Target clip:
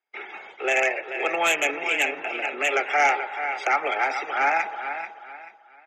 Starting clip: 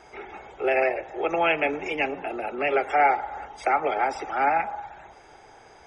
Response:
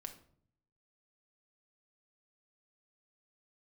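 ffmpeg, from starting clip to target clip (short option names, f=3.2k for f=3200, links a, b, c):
-filter_complex "[0:a]agate=range=-38dB:threshold=-45dB:ratio=16:detection=peak,highpass=280,lowpass=3.2k,aecho=1:1:436|872|1308:0.316|0.0949|0.0285,acrossover=split=1700[a][b];[b]aeval=exprs='0.188*sin(PI/2*3.16*val(0)/0.188)':c=same[c];[a][c]amix=inputs=2:normalize=0,volume=-3dB"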